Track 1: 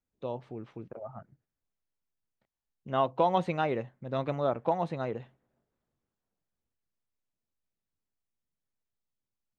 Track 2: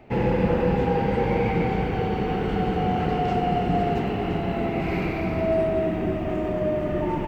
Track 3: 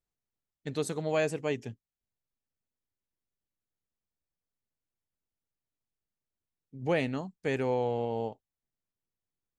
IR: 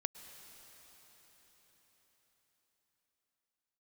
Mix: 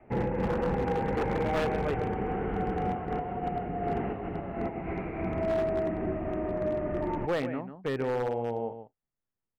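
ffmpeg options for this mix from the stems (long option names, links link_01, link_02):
-filter_complex "[0:a]highpass=frequency=130:width=0.5412,highpass=frequency=130:width=1.3066,alimiter=limit=-22.5dB:level=0:latency=1:release=29,volume=-14.5dB,asplit=2[link_01][link_02];[1:a]volume=-5dB[link_03];[2:a]adelay=400,volume=0.5dB,asplit=2[link_04][link_05];[link_05]volume=-10.5dB[link_06];[link_02]apad=whole_len=320710[link_07];[link_03][link_07]sidechaincompress=threshold=-48dB:ratio=12:attack=16:release=157[link_08];[link_06]aecho=0:1:144:1[link_09];[link_01][link_08][link_04][link_09]amix=inputs=4:normalize=0,lowpass=frequency=2100:width=0.5412,lowpass=frequency=2100:width=1.3066,adynamicequalizer=threshold=0.0112:dfrequency=150:dqfactor=1.2:tfrequency=150:tqfactor=1.2:attack=5:release=100:ratio=0.375:range=2:mode=cutabove:tftype=bell,aeval=exprs='0.0794*(abs(mod(val(0)/0.0794+3,4)-2)-1)':channel_layout=same"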